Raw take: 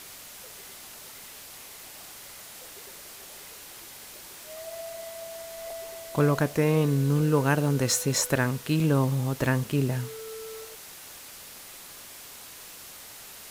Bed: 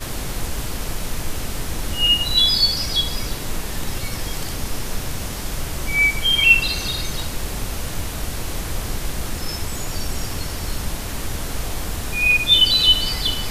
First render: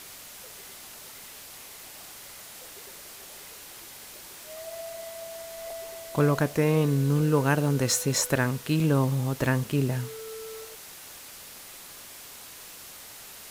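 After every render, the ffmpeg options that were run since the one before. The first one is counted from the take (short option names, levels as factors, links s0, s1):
-af anull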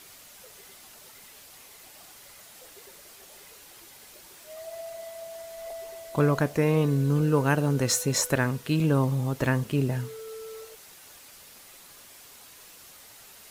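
-af "afftdn=nr=6:nf=-45"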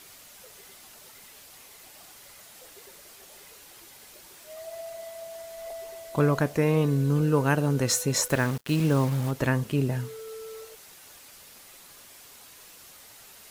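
-filter_complex "[0:a]asettb=1/sr,asplit=3[s0][s1][s2];[s0]atrim=end=8.284[s3];[s1]atrim=start=8.28:end=9.31,asetpts=PTS-STARTPTS,afade=t=in:d=0.004:c=qsin,afade=t=out:st=1.026:d=0.004:c=qsin,acrusher=bits=5:mix=0:aa=0.5[s4];[s2]atrim=start=9.306[s5];[s3][s4]acrossfade=d=0.004:c1=hsin:c2=qsin[s6];[s6][s5]acrossfade=d=0.004:c1=qsin:c2=hsin"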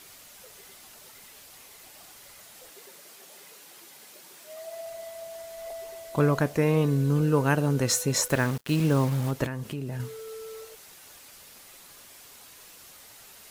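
-filter_complex "[0:a]asettb=1/sr,asplit=3[s0][s1][s2];[s0]atrim=end=2.714[s3];[s1]atrim=start=2.71:end=4.86,asetpts=PTS-STARTPTS,afade=t=in:d=0.004:c=qsin,afade=t=out:st=2.146:d=0.004:c=qsin,highpass=f=140:w=0.5412,highpass=f=140:w=1.3066[s4];[s2]atrim=start=4.856[s5];[s3][s4]acrossfade=d=0.004:c1=hsin:c2=qsin[s6];[s6][s5]acrossfade=d=0.004:c1=qsin:c2=hsin,asettb=1/sr,asplit=3[s7][s8][s9];[s7]atrim=end=9.464[s10];[s8]atrim=start=9.46:end=10,asetpts=PTS-STARTPTS,afade=t=in:d=0.004:c=qsin,afade=t=out:st=0.536:d=0.004:c=qsin,acompressor=threshold=0.0316:ratio=6:attack=3.2:release=140:knee=1:detection=peak[s11];[s9]atrim=start=9.996[s12];[s10][s11]acrossfade=d=0.004:c1=hsin:c2=qsin[s13];[s13][s12]acrossfade=d=0.004:c1=qsin:c2=hsin"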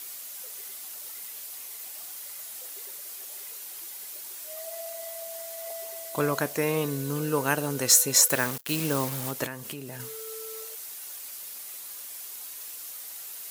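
-af "highpass=f=400:p=1,aemphasis=mode=production:type=50kf"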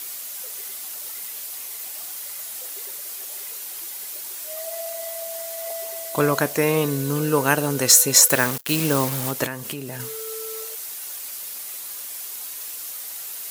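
-af "volume=2.11,alimiter=limit=0.891:level=0:latency=1"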